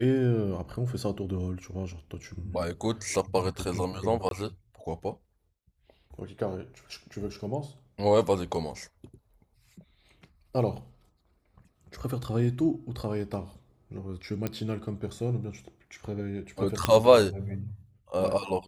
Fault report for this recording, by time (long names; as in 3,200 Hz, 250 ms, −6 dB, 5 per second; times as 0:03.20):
0:04.29–0:04.31: drop-out 22 ms
0:14.47: click −16 dBFS
0:16.85: click −8 dBFS